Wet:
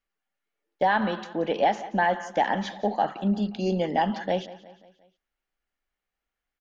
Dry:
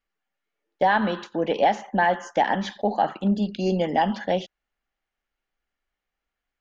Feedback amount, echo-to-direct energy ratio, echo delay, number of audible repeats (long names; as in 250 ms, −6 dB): 50%, −16.5 dB, 178 ms, 3